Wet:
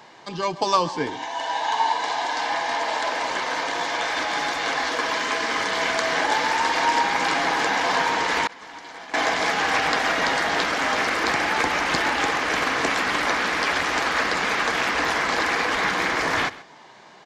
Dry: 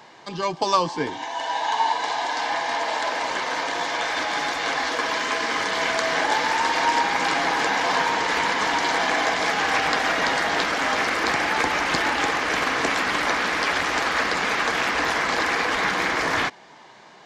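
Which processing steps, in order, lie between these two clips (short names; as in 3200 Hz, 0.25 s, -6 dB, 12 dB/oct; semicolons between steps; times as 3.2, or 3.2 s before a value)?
echo 0.132 s -18.5 dB; 8.47–9.14 expander -10 dBFS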